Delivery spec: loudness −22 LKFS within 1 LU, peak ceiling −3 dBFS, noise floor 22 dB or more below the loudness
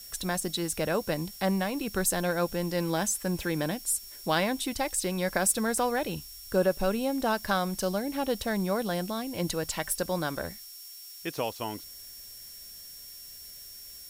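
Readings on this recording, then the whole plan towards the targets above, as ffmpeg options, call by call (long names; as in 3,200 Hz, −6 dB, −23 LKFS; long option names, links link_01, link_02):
interfering tone 5,500 Hz; level of the tone −48 dBFS; background noise floor −46 dBFS; target noise floor −52 dBFS; integrated loudness −29.5 LKFS; sample peak −13.0 dBFS; target loudness −22.0 LKFS
→ -af "bandreject=frequency=5500:width=30"
-af "afftdn=noise_reduction=6:noise_floor=-46"
-af "volume=7.5dB"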